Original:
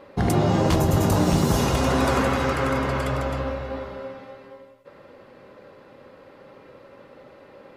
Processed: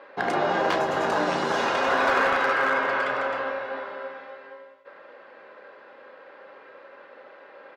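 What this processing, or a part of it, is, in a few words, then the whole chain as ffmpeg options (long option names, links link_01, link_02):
megaphone: -filter_complex "[0:a]highpass=550,lowpass=3200,equalizer=frequency=1600:width_type=o:width=0.22:gain=8,asoftclip=type=hard:threshold=-18dB,asplit=2[link_01][link_02];[link_02]adelay=33,volume=-10.5dB[link_03];[link_01][link_03]amix=inputs=2:normalize=0,volume=2.5dB"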